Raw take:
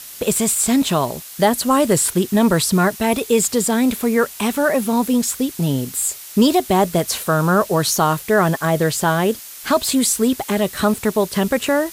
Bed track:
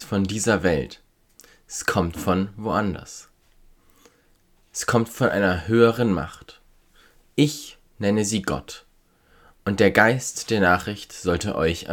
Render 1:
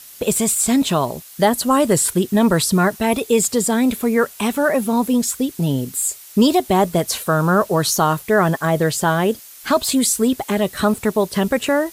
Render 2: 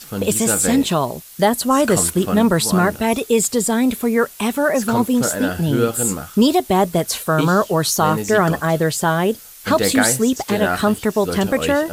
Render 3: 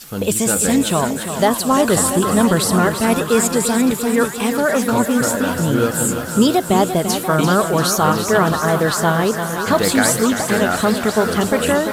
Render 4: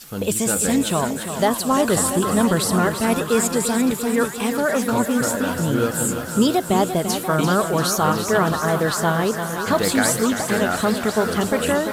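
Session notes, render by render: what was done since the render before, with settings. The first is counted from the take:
denoiser 6 dB, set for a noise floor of -36 dBFS
add bed track -3 dB
on a send: delay with a stepping band-pass 0.527 s, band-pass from 1400 Hz, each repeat 1.4 oct, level -4 dB; on the sum: warbling echo 0.343 s, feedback 68%, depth 55 cents, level -9 dB
gain -3.5 dB

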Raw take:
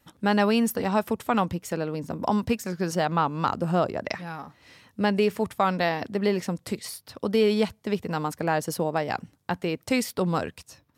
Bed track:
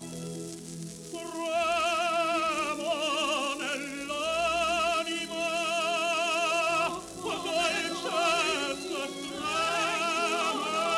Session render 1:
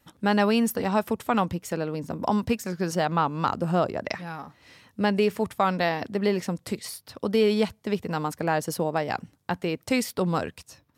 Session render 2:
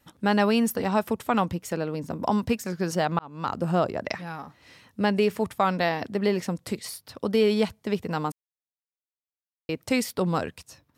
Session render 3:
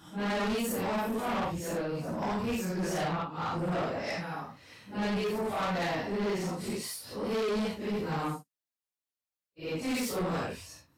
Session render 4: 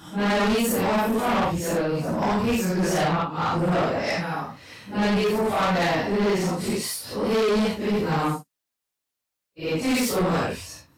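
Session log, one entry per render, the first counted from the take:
nothing audible
3.19–3.63 fade in; 8.32–9.69 mute
phase scrambler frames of 0.2 s; soft clip -28 dBFS, distortion -7 dB
gain +9 dB

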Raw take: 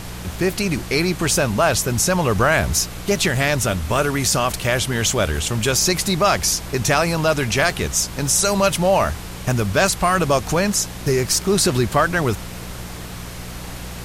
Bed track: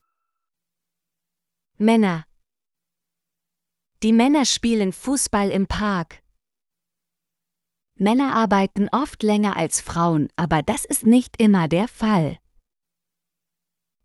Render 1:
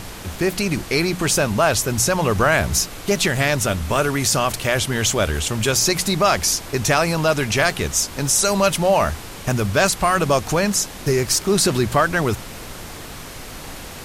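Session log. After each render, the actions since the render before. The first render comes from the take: de-hum 60 Hz, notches 3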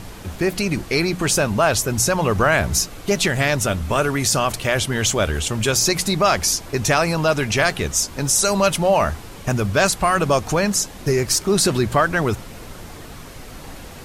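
denoiser 6 dB, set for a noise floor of -35 dBFS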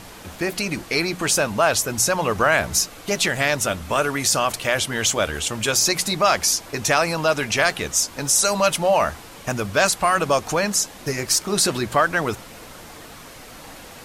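low shelf 190 Hz -12 dB; notch 390 Hz, Q 12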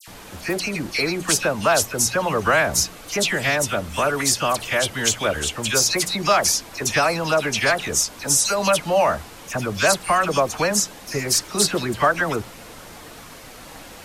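dispersion lows, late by 78 ms, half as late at 2100 Hz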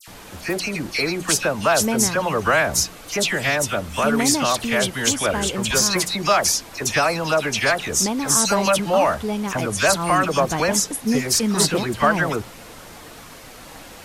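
add bed track -6.5 dB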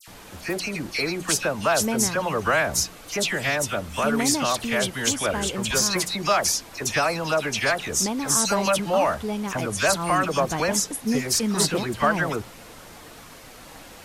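gain -3.5 dB

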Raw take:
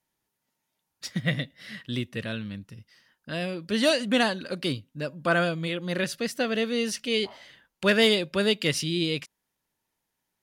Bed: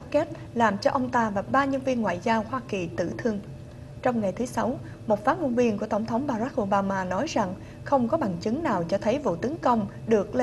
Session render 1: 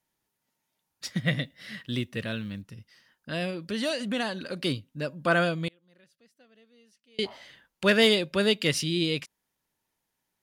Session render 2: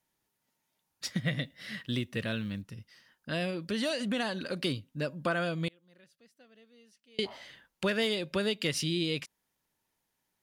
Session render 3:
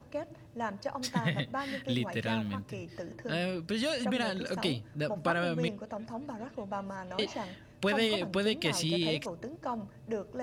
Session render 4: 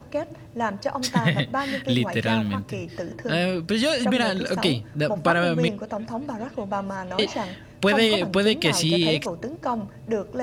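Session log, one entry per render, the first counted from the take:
1.43–2.62 companded quantiser 8-bit; 3.5–4.56 compressor 2:1, threshold -30 dBFS; 5.68–7.19 flipped gate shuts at -33 dBFS, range -33 dB
compressor 6:1, threshold -27 dBFS, peak gain reduction 10 dB
add bed -13.5 dB
gain +9.5 dB

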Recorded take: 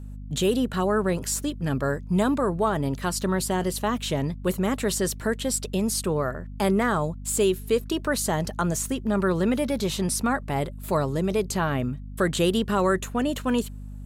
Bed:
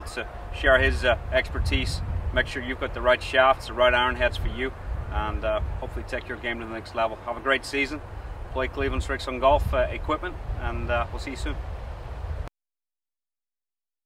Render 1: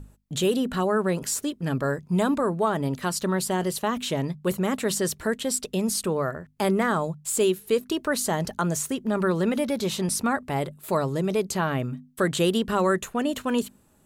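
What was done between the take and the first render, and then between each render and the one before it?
notches 50/100/150/200/250 Hz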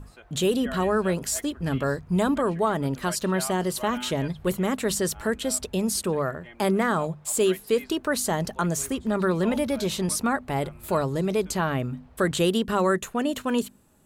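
add bed -18.5 dB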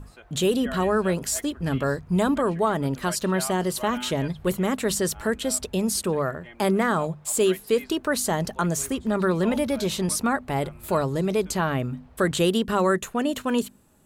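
gain +1 dB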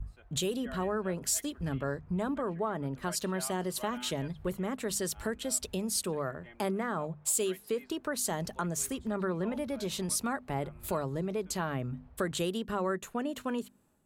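compressor 3:1, threshold -33 dBFS, peak gain reduction 12.5 dB; three-band expander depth 70%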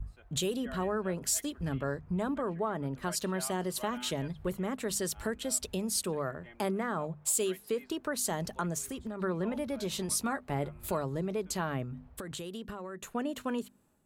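8.78–9.22 compressor 5:1, threshold -34 dBFS; 9.92–10.76 doubler 14 ms -11 dB; 11.83–13.01 compressor 12:1, threshold -36 dBFS

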